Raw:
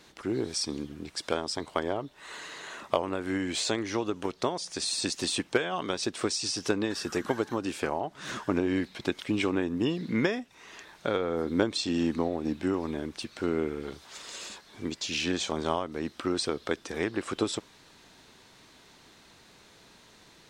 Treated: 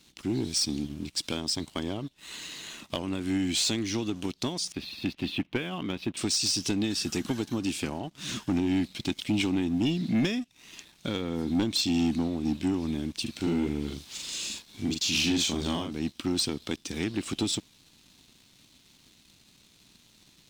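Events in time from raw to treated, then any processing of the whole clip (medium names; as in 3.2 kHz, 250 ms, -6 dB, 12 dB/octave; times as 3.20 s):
4.72–6.17 s: low-pass 2.8 kHz 24 dB/octave
13.22–15.92 s: doubling 41 ms -3.5 dB
whole clip: high-order bell 860 Hz -13.5 dB 2.6 oct; waveshaping leveller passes 2; trim -1.5 dB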